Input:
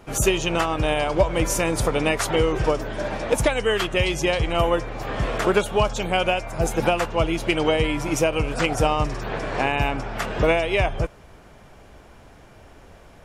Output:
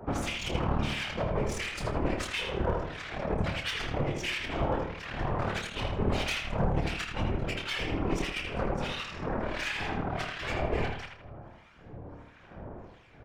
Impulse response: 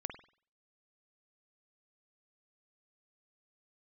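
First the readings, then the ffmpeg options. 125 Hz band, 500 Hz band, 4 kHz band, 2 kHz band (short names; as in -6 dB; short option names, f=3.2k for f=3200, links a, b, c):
-6.0 dB, -12.5 dB, -7.5 dB, -8.5 dB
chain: -filter_complex "[0:a]highpass=44,highshelf=f=3.7k:g=-9.5,acrossover=split=170|1900[a][b][c];[a]acompressor=threshold=-33dB:ratio=4[d];[b]acompressor=threshold=-35dB:ratio=4[e];[c]acompressor=threshold=-34dB:ratio=4[f];[d][e][f]amix=inputs=3:normalize=0,aphaser=in_gain=1:out_gain=1:delay=4.9:decay=0.37:speed=0.16:type=sinusoidal,aeval=exprs='0.224*(cos(1*acos(clip(val(0)/0.224,-1,1)))-cos(1*PI/2))+0.0562*(cos(5*acos(clip(val(0)/0.224,-1,1)))-cos(5*PI/2))+0.0891*(cos(8*acos(clip(val(0)/0.224,-1,1)))-cos(8*PI/2))':c=same,acrossover=split=1400[g][h];[g]aeval=exprs='val(0)*(1-1/2+1/2*cos(2*PI*1.5*n/s))':c=same[i];[h]aeval=exprs='val(0)*(1-1/2-1/2*cos(2*PI*1.5*n/s))':c=same[j];[i][j]amix=inputs=2:normalize=0,acrossover=split=490[k][l];[l]adynamicsmooth=sensitivity=2.5:basefreq=5.1k[m];[k][m]amix=inputs=2:normalize=0,afftfilt=real='hypot(re,im)*cos(2*PI*random(0))':imag='hypot(re,im)*sin(2*PI*random(1))':win_size=512:overlap=0.75,aeval=exprs='clip(val(0),-1,0.0794)':c=same,asplit=2[n][o];[o]adelay=28,volume=-8.5dB[p];[n][p]amix=inputs=2:normalize=0,asplit=2[q][r];[r]adelay=80,lowpass=f=3.9k:p=1,volume=-4dB,asplit=2[s][t];[t]adelay=80,lowpass=f=3.9k:p=1,volume=0.42,asplit=2[u][v];[v]adelay=80,lowpass=f=3.9k:p=1,volume=0.42,asplit=2[w][x];[x]adelay=80,lowpass=f=3.9k:p=1,volume=0.42,asplit=2[y][z];[z]adelay=80,lowpass=f=3.9k:p=1,volume=0.42[aa];[s][u][w][y][aa]amix=inputs=5:normalize=0[ab];[q][ab]amix=inputs=2:normalize=0"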